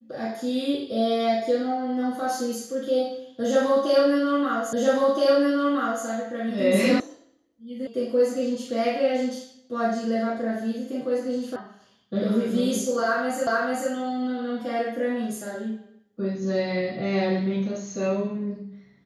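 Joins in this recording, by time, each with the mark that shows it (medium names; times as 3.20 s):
4.73 s: repeat of the last 1.32 s
7.00 s: sound stops dead
7.87 s: sound stops dead
11.56 s: sound stops dead
13.47 s: repeat of the last 0.44 s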